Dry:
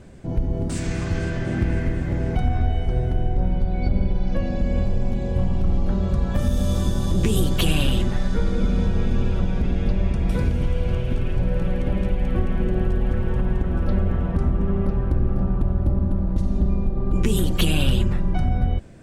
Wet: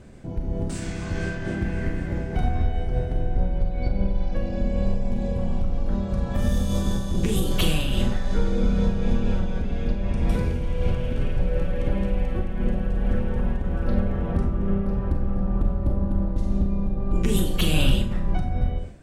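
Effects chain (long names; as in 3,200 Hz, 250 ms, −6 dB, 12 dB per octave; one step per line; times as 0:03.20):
four-comb reverb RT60 0.39 s, combs from 30 ms, DRR 4 dB
amplitude modulation by smooth noise, depth 60%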